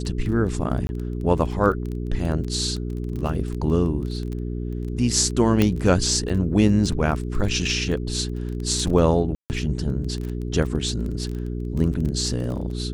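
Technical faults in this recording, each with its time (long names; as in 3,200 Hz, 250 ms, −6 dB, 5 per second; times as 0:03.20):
surface crackle 16 per second −28 dBFS
mains hum 60 Hz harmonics 7 −28 dBFS
0:00.87–0:00.89: drop-out 21 ms
0:05.62: click −6 dBFS
0:09.35–0:09.50: drop-out 149 ms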